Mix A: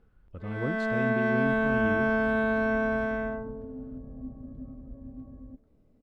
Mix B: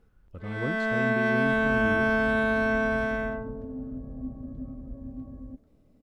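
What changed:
first sound: add high shelf 2200 Hz +10 dB; second sound +4.0 dB

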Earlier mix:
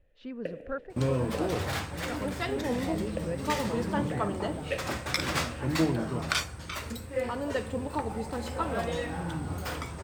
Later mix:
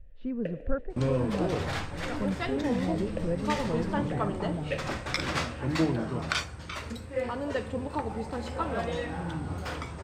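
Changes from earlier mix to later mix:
speech: add tilt -3.5 dB/oct; master: add air absorption 55 m

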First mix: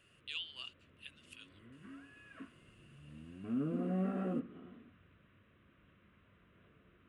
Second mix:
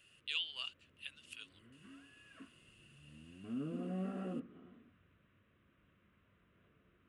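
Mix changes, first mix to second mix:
speech +4.0 dB; background -5.0 dB

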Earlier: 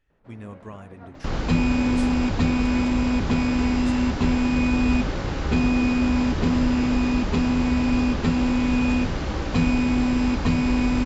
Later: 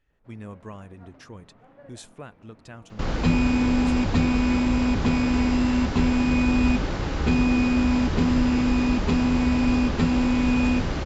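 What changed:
first sound -7.0 dB; second sound: entry +1.75 s

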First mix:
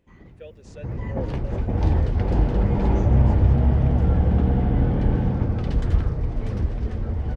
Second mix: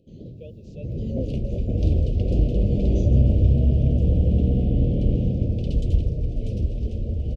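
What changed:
speech: add air absorption 150 m; first sound: add graphic EQ 125/250/500/1000/2000/4000 Hz +10/+6/+9/+5/-11/+12 dB; master: add elliptic band-stop 600–2700 Hz, stop band 40 dB

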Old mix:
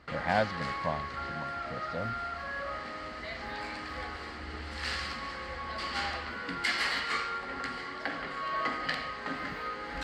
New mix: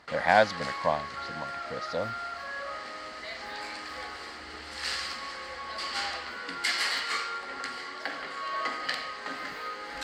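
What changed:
speech +7.5 dB; master: add tone controls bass -12 dB, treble +8 dB

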